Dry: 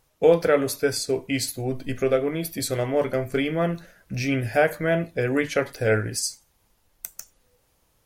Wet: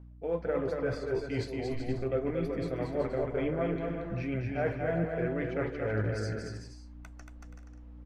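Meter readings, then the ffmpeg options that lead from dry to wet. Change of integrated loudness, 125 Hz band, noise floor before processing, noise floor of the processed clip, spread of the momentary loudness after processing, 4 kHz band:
-9.0 dB, -4.5 dB, -67 dBFS, -49 dBFS, 19 LU, -17.0 dB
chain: -af "lowpass=1700,areverse,acompressor=threshold=0.0282:ratio=6,areverse,aeval=exprs='val(0)+0.00282*(sin(2*PI*60*n/s)+sin(2*PI*2*60*n/s)/2+sin(2*PI*3*60*n/s)/3+sin(2*PI*4*60*n/s)/4+sin(2*PI*5*60*n/s)/5)':c=same,aphaser=in_gain=1:out_gain=1:delay=3.3:decay=0.33:speed=2:type=triangular,aecho=1:1:230|379.5|476.7|539.8|580.9:0.631|0.398|0.251|0.158|0.1"

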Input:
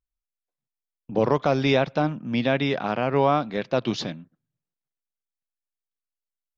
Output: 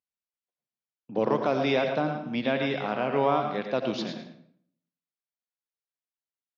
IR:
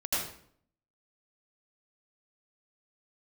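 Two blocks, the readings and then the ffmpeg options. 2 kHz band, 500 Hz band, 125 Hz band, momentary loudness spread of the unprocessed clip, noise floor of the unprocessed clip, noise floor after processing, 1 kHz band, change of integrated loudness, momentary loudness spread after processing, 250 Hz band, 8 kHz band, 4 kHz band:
-3.0 dB, -3.0 dB, -8.5 dB, 9 LU, under -85 dBFS, under -85 dBFS, -3.0 dB, -3.5 dB, 8 LU, -4.0 dB, no reading, -4.0 dB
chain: -filter_complex "[0:a]highpass=170,lowpass=5300,aecho=1:1:111:0.355,asplit=2[s0][s1];[1:a]atrim=start_sample=2205[s2];[s1][s2]afir=irnorm=-1:irlink=0,volume=0.211[s3];[s0][s3]amix=inputs=2:normalize=0,volume=0.531"

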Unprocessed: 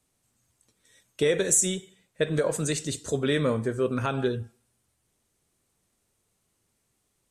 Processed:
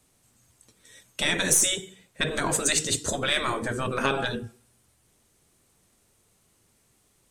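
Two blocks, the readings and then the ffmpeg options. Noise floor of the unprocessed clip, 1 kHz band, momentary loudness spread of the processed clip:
-75 dBFS, +6.0 dB, 11 LU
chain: -af "aeval=exprs='0.335*(cos(1*acos(clip(val(0)/0.335,-1,1)))-cos(1*PI/2))+0.00531*(cos(8*acos(clip(val(0)/0.335,-1,1)))-cos(8*PI/2))':c=same,afftfilt=real='re*lt(hypot(re,im),0.158)':imag='im*lt(hypot(re,im),0.158)':win_size=1024:overlap=0.75,volume=2.66"

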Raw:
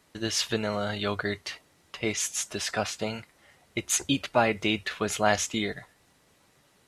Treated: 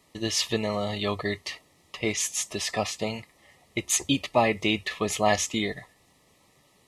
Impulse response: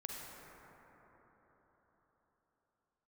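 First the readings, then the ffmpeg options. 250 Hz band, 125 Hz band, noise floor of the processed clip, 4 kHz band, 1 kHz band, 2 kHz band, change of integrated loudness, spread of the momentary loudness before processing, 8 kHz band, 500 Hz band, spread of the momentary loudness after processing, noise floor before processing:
+1.5 dB, +1.5 dB, -63 dBFS, +1.5 dB, +1.0 dB, 0.0 dB, +1.0 dB, 12 LU, +1.5 dB, +1.5 dB, 11 LU, -64 dBFS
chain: -af "asuperstop=centerf=1500:order=20:qfactor=4,volume=1.19"

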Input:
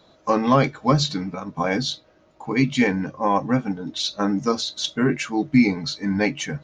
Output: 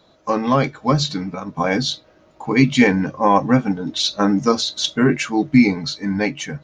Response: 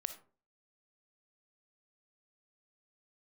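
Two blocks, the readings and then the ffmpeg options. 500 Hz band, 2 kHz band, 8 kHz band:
+3.5 dB, +4.0 dB, no reading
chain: -af "dynaudnorm=f=260:g=9:m=3.76"

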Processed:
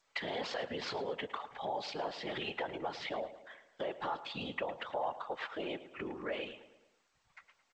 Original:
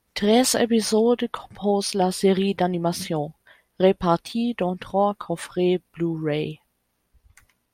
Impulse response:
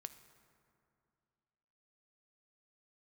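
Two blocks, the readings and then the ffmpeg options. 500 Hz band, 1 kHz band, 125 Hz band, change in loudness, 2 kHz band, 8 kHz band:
-17.5 dB, -13.0 dB, -24.5 dB, -17.0 dB, -7.0 dB, under -25 dB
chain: -filter_complex "[0:a]alimiter=limit=0.158:level=0:latency=1:release=32,highpass=54,acrossover=split=530 3400:gain=0.0891 1 0.126[s0][s1][s2];[s0][s1][s2]amix=inputs=3:normalize=0,aecho=1:1:3.6:0.38,afftfilt=real='hypot(re,im)*cos(2*PI*random(0))':imag='hypot(re,im)*sin(2*PI*random(1))':win_size=512:overlap=0.75,acompressor=threshold=0.00631:ratio=2,lowpass=f=5000:w=0.5412,lowpass=f=5000:w=1.3066,highshelf=f=2600:g=2.5,asplit=2[s3][s4];[s4]adelay=109,lowpass=f=3800:p=1,volume=0.2,asplit=2[s5][s6];[s6]adelay=109,lowpass=f=3800:p=1,volume=0.52,asplit=2[s7][s8];[s8]adelay=109,lowpass=f=3800:p=1,volume=0.52,asplit=2[s9][s10];[s10]adelay=109,lowpass=f=3800:p=1,volume=0.52,asplit=2[s11][s12];[s12]adelay=109,lowpass=f=3800:p=1,volume=0.52[s13];[s5][s7][s9][s11][s13]amix=inputs=5:normalize=0[s14];[s3][s14]amix=inputs=2:normalize=0,volume=1.78" -ar 16000 -c:a g722

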